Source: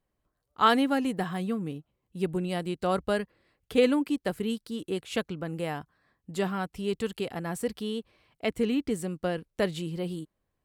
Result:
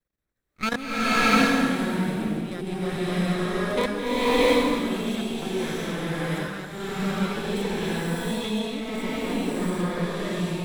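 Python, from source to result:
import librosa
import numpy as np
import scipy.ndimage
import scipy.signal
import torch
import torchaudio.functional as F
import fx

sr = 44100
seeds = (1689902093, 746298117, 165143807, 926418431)

y = fx.lower_of_two(x, sr, delay_ms=0.52)
y = fx.low_shelf(y, sr, hz=320.0, db=-3.5)
y = fx.level_steps(y, sr, step_db=12)
y = fx.buffer_crackle(y, sr, first_s=0.71, period_s=0.44, block=1024, kind='repeat')
y = fx.rev_bloom(y, sr, seeds[0], attack_ms=710, drr_db=-11.5)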